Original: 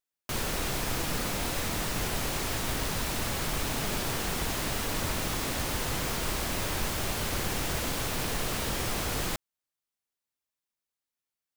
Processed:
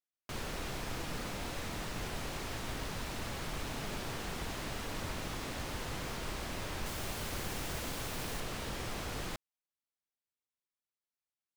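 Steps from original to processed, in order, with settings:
high-shelf EQ 8,100 Hz −10.5 dB, from 0:06.86 −2 dB, from 0:08.40 −9.5 dB
level −7.5 dB

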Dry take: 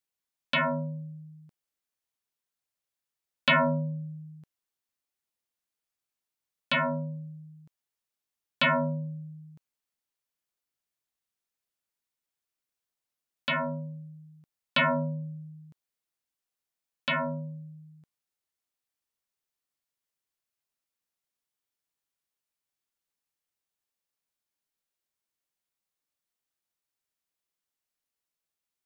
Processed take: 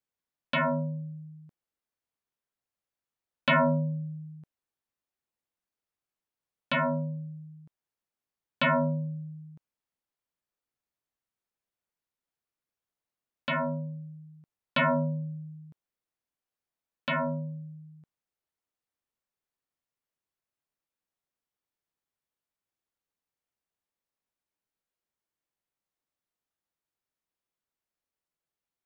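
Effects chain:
high-shelf EQ 2,400 Hz −11 dB
level +2 dB

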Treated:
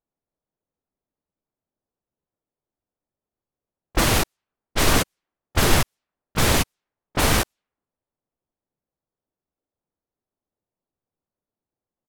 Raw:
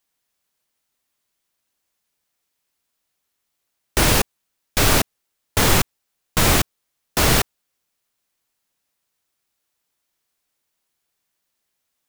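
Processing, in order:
phase distortion by the signal itself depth 0.18 ms
low-pass that shuts in the quiet parts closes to 670 Hz, open at −18.5 dBFS
pitch-shifted copies added −4 semitones −2 dB, −3 semitones −3 dB, +4 semitones −17 dB
level −4 dB

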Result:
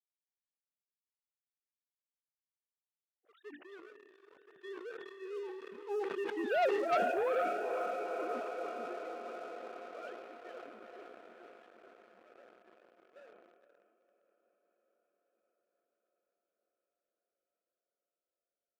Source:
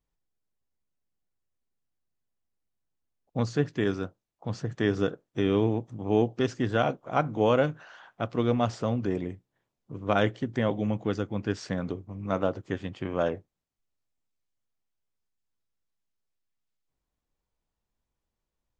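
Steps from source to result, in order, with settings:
three sine waves on the formant tracks
source passing by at 0:06.77, 12 m/s, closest 1.8 metres
rotating-speaker cabinet horn 1.2 Hz, later 7 Hz, at 0:01.68
on a send: feedback delay with all-pass diffusion 483 ms, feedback 73%, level −7 dB
on the sum: leveller curve on the samples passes 2
high-pass filter 660 Hz 6 dB per octave
level that may fall only so fast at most 35 dB per second

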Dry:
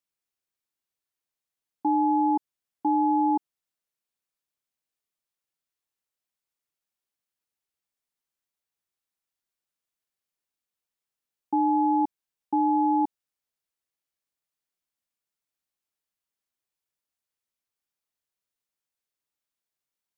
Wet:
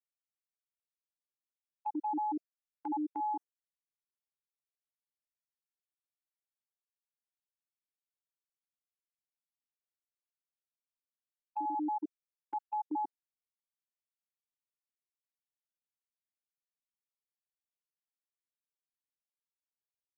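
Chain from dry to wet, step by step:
time-frequency cells dropped at random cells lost 60%
noise gate −30 dBFS, range −21 dB
high-pass filter 380 Hz 12 dB per octave
brickwall limiter −30 dBFS, peak gain reduction 11.5 dB

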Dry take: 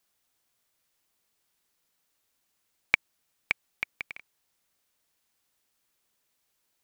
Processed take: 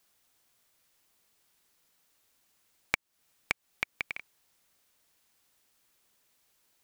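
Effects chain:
downward compressor 4 to 1, threshold −33 dBFS, peak gain reduction 15 dB
level +5 dB

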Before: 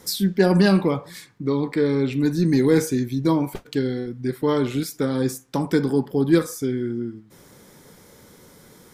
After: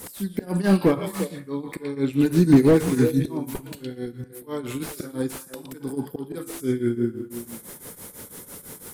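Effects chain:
high shelf with overshoot 7,300 Hz +12.5 dB, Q 1.5
hum removal 333.8 Hz, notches 33
volume swells 613 ms
echo through a band-pass that steps 116 ms, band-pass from 3,300 Hz, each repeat −1.4 octaves, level −3 dB
shaped tremolo triangle 6 Hz, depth 90%
convolution reverb, pre-delay 3 ms, DRR 16.5 dB
slew-rate limiting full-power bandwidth 44 Hz
level +8 dB

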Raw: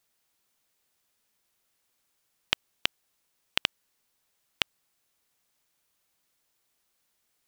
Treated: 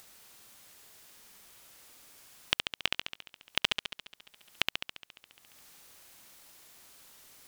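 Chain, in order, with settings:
tape wow and flutter 47 cents
flutter between parallel walls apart 11.9 metres, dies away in 1 s
upward compression, threshold −37 dBFS
level −2 dB

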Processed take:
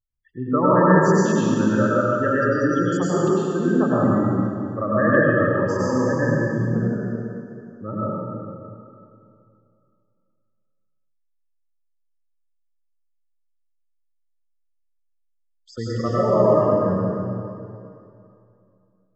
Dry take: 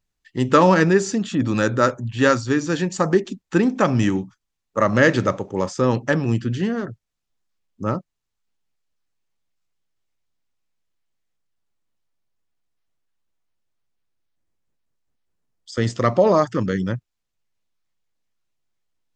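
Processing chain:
gate on every frequency bin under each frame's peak −15 dB strong
dense smooth reverb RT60 2.6 s, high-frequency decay 0.9×, pre-delay 85 ms, DRR −9 dB
level −8.5 dB

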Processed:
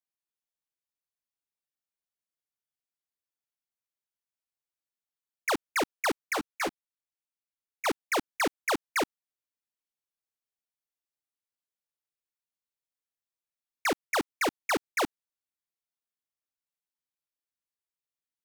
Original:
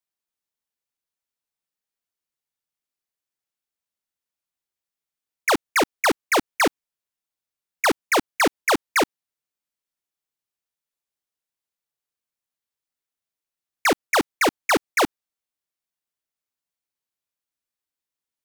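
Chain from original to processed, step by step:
0:06.33–0:07.86: string-ensemble chorus
level −8.5 dB

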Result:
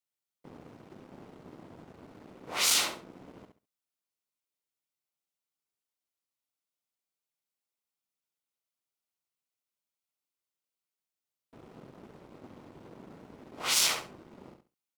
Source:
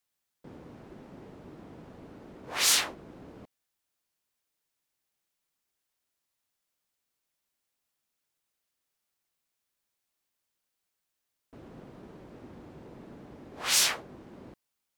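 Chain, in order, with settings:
high-pass filter 95 Hz 12 dB per octave
notch filter 1,700 Hz, Q 6.3
leveller curve on the samples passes 2
repeating echo 68 ms, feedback 21%, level −7.5 dB
saturating transformer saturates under 2,600 Hz
level −6 dB

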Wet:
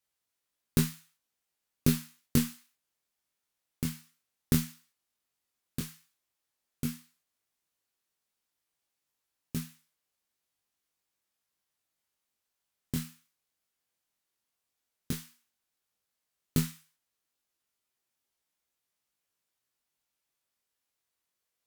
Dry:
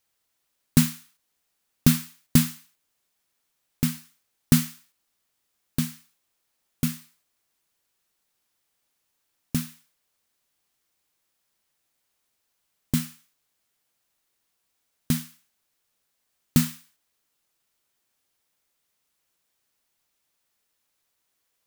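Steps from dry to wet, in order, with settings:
harmonic generator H 2 −8 dB, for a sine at −2 dBFS
tape wow and flutter 20 cents
chorus effect 0.11 Hz, delay 17.5 ms, depth 6.7 ms
level −5.5 dB

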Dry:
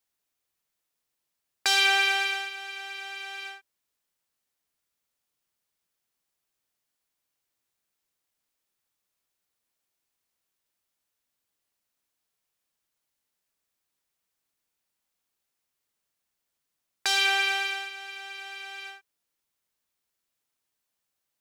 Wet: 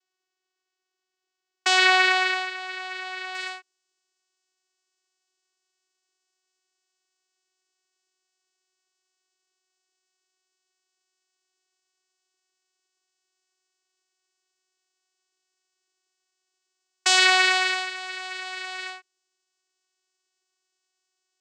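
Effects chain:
spectral tilt +2 dB per octave
channel vocoder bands 8, saw 372 Hz
high-shelf EQ 5,400 Hz −3.5 dB, from 0:03.35 +10 dB
level +2.5 dB

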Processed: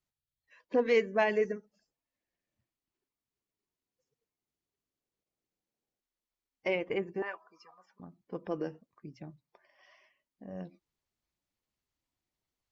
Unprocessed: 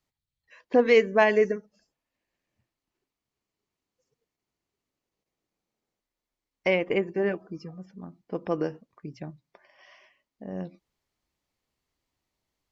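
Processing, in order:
spectral magnitudes quantised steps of 15 dB
0:07.22–0:08.00: high-pass with resonance 1,000 Hz, resonance Q 4.9
level −7 dB

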